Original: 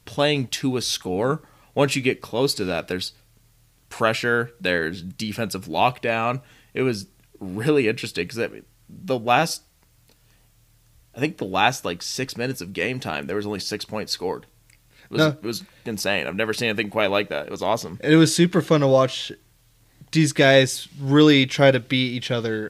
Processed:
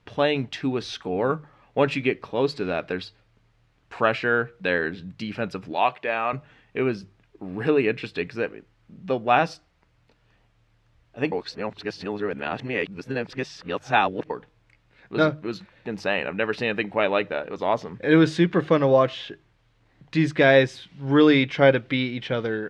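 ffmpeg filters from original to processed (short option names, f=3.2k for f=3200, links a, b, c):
-filter_complex "[0:a]asettb=1/sr,asplit=3[a][b][c];[a]atrim=end=5.734[d];[b]atrim=start=5.73:end=6.33,asetpts=PTS-STARTPTS,afade=t=in:d=0.004:c=qsin,afade=t=out:st=0.596:d=0.004:c=qsin,highpass=f=520:p=1[e];[c]atrim=start=6.326[f];[d][e]acrossfade=d=0.004:c1=hsin:c2=qsin[g];[g][f]acrossfade=d=0.004:c1=qsin:c2=hsin,asplit=3[h][i][j];[h]atrim=end=11.322[k];[i]atrim=start=11.318:end=14.302,asetpts=PTS-STARTPTS,areverse[l];[j]atrim=start=14.298[m];[k][l]acrossfade=d=0.004:c1=hsin:c2=hsin[n];[n][m]acrossfade=d=0.004:c1=hsin:c2=hsin,lowpass=2.5k,lowshelf=f=240:g=-5,bandreject=f=50:t=h:w=6,bandreject=f=100:t=h:w=6,bandreject=f=150:t=h:w=6"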